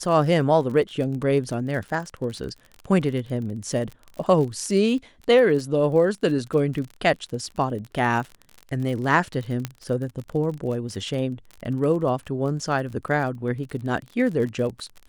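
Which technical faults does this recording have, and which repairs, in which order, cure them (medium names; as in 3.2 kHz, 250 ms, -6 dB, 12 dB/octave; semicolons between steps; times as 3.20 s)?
crackle 41 per s -31 dBFS
9.65 s: pop -12 dBFS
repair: de-click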